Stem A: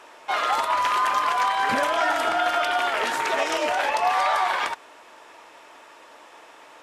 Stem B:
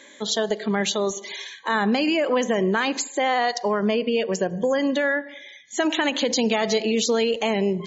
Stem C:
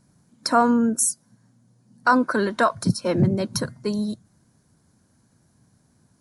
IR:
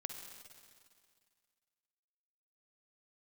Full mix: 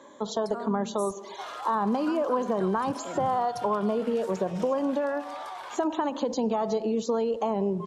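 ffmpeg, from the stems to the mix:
-filter_complex "[0:a]equalizer=frequency=2000:width_type=o:width=1.1:gain=-8,alimiter=limit=-20.5dB:level=0:latency=1:release=53,adelay=1100,volume=-9.5dB[link_01];[1:a]highshelf=frequency=1500:width_type=q:width=3:gain=-11,volume=0.5dB[link_02];[2:a]volume=-16dB[link_03];[link_01][link_02][link_03]amix=inputs=3:normalize=0,acrossover=split=130[link_04][link_05];[link_05]acompressor=threshold=-29dB:ratio=2[link_06];[link_04][link_06]amix=inputs=2:normalize=0"

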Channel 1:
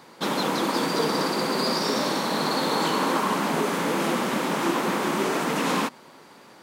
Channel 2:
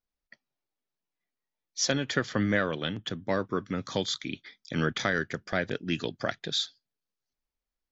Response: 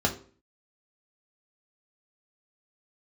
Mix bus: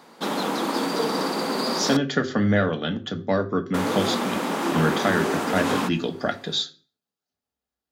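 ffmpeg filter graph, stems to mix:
-filter_complex "[0:a]volume=-2.5dB,asplit=3[link_01][link_02][link_03];[link_01]atrim=end=1.97,asetpts=PTS-STARTPTS,afade=type=out:start_time=1.966:duration=0.004:curve=hsin[link_04];[link_02]atrim=start=1.97:end=3.74,asetpts=PTS-STARTPTS,volume=0[link_05];[link_03]atrim=start=3.74,asetpts=PTS-STARTPTS,afade=type=in:duration=0.004:curve=hsin[link_06];[link_04][link_05][link_06]concat=n=3:v=0:a=1,asplit=2[link_07][link_08];[link_08]volume=-21dB[link_09];[1:a]highpass=81,volume=-1.5dB,asplit=2[link_10][link_11];[link_11]volume=-9dB[link_12];[2:a]atrim=start_sample=2205[link_13];[link_09][link_12]amix=inputs=2:normalize=0[link_14];[link_14][link_13]afir=irnorm=-1:irlink=0[link_15];[link_07][link_10][link_15]amix=inputs=3:normalize=0"

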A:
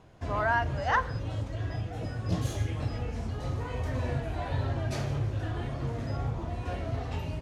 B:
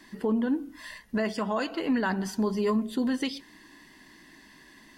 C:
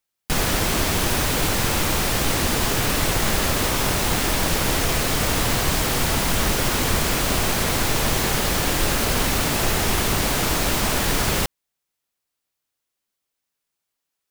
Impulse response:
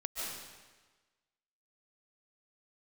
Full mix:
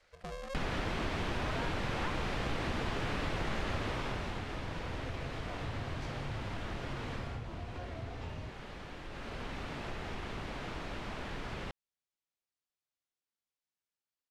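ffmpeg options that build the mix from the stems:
-filter_complex "[0:a]adelay=1100,volume=-5.5dB[link_01];[1:a]highpass=frequency=150:width=0.5412,highpass=frequency=150:width=1.3066,aeval=exprs='val(0)*sgn(sin(2*PI*270*n/s))':channel_layout=same,volume=-14.5dB[link_02];[2:a]acrossover=split=3600[link_03][link_04];[link_04]acompressor=threshold=-42dB:ratio=4:attack=1:release=60[link_05];[link_03][link_05]amix=inputs=2:normalize=0,adelay=250,volume=8dB,afade=type=out:start_time=3.77:duration=0.69:silence=0.298538,afade=type=out:start_time=7.18:duration=0.23:silence=0.298538,afade=type=in:start_time=9.09:duration=0.45:silence=0.334965[link_06];[link_01][link_02][link_06]amix=inputs=3:normalize=0,lowpass=7100,acompressor=threshold=-41dB:ratio=2"

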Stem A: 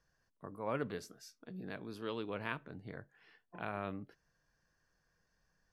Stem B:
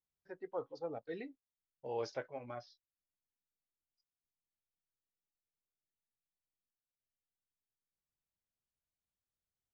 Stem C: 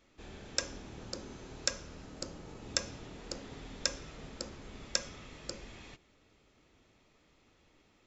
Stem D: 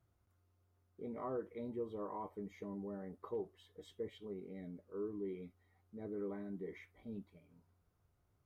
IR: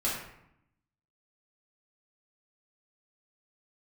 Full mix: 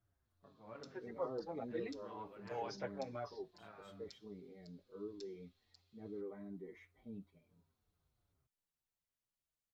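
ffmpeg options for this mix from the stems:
-filter_complex "[0:a]lowpass=2700,volume=-15.5dB,asplit=2[link_01][link_02];[link_02]volume=-10dB[link_03];[1:a]adelay=650,volume=2dB[link_04];[2:a]bandpass=frequency=4100:width_type=q:width=4.6:csg=0,adelay=250,volume=-15dB[link_05];[3:a]volume=-2.5dB[link_06];[4:a]atrim=start_sample=2205[link_07];[link_03][link_07]afir=irnorm=-1:irlink=0[link_08];[link_01][link_04][link_05][link_06][link_08]amix=inputs=5:normalize=0,asplit=2[link_09][link_10];[link_10]adelay=6.4,afreqshift=-2.8[link_11];[link_09][link_11]amix=inputs=2:normalize=1"

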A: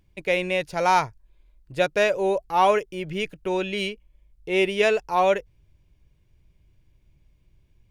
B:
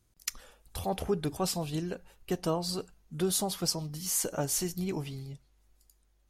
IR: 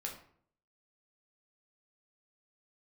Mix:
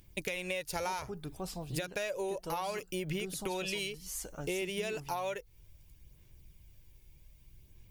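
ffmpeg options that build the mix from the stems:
-filter_complex "[0:a]aemphasis=mode=production:type=75fm,acompressor=threshold=-30dB:ratio=6,volume=0dB[link_01];[1:a]volume=-11dB[link_02];[link_01][link_02]amix=inputs=2:normalize=0,aphaser=in_gain=1:out_gain=1:delay=2.3:decay=0.32:speed=0.64:type=sinusoidal,acompressor=threshold=-32dB:ratio=6"

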